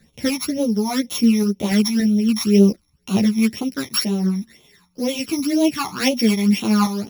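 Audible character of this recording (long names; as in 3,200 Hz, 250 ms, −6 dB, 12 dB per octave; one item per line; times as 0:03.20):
a buzz of ramps at a fixed pitch in blocks of 8 samples
phaser sweep stages 12, 2 Hz, lowest notch 480–1,700 Hz
sample-and-hold tremolo 3.5 Hz
a shimmering, thickened sound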